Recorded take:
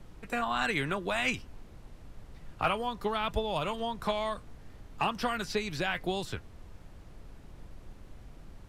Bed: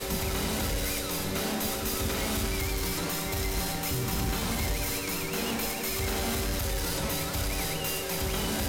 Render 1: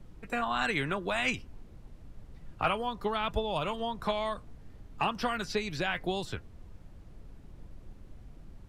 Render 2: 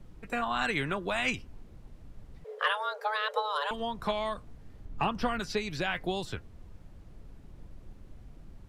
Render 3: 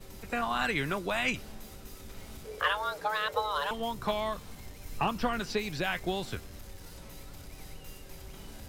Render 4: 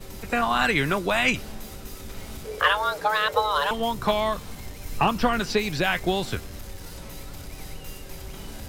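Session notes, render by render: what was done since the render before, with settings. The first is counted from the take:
noise reduction 6 dB, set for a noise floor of -52 dBFS
2.44–3.71 s: frequency shift +420 Hz; 4.85–5.40 s: tilt EQ -1.5 dB/octave
add bed -19.5 dB
trim +8 dB

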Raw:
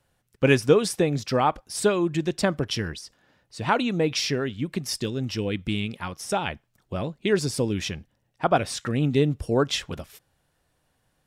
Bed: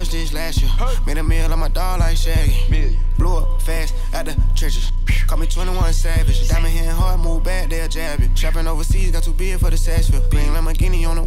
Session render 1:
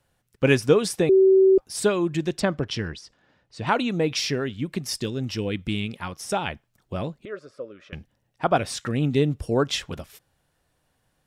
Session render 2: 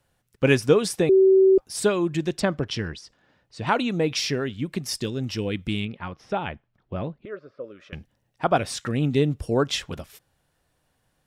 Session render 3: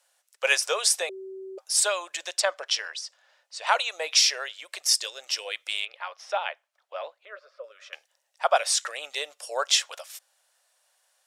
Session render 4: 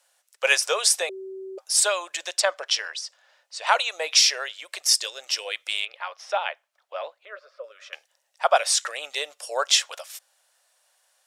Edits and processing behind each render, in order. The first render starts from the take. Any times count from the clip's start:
1.09–1.58 s: bleep 382 Hz -12 dBFS; 2.40–3.67 s: distance through air 68 m; 7.25–7.93 s: two resonant band-passes 850 Hz, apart 1.1 oct
5.85–7.64 s: distance through air 300 m
elliptic high-pass 570 Hz, stop band 60 dB; peaking EQ 7.2 kHz +11.5 dB 1.9 oct
trim +2.5 dB

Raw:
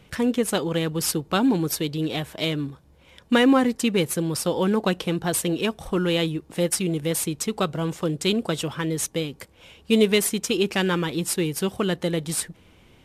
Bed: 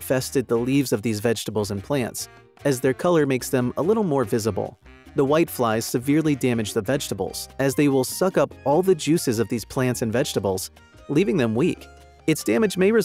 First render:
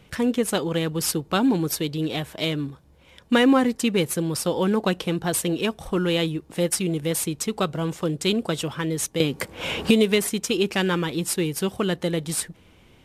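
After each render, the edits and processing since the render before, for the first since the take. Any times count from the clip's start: 9.20–10.28 s: three bands compressed up and down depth 100%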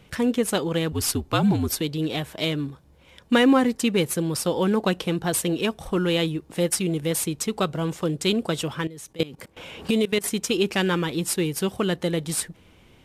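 0.92–1.81 s: frequency shift -66 Hz; 8.87–10.24 s: level held to a coarse grid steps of 20 dB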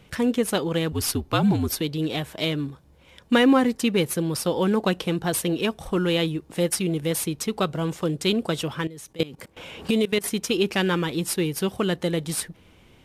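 dynamic bell 7.6 kHz, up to -5 dB, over -46 dBFS, Q 3.1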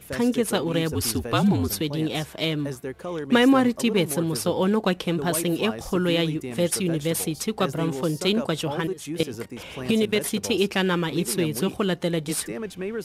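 add bed -12.5 dB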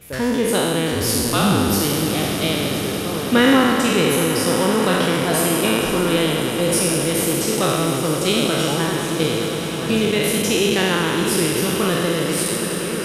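spectral sustain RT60 2.06 s; echo with a slow build-up 104 ms, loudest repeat 8, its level -16.5 dB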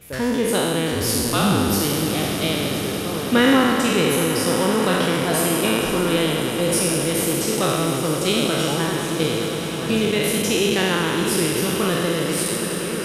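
trim -1.5 dB

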